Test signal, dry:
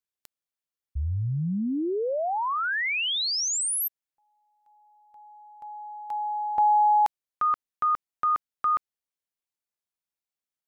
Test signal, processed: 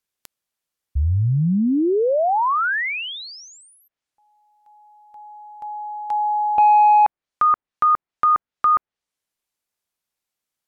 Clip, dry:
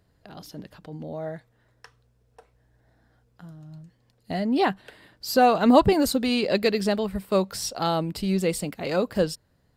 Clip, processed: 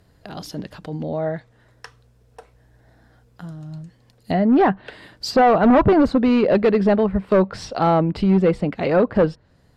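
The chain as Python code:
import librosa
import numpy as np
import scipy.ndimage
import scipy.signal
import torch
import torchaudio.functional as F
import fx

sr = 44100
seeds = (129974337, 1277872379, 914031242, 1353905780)

y = np.clip(10.0 ** (19.5 / 20.0) * x, -1.0, 1.0) / 10.0 ** (19.5 / 20.0)
y = fx.env_lowpass_down(y, sr, base_hz=1600.0, full_db=-25.5)
y = F.gain(torch.from_numpy(y), 9.0).numpy()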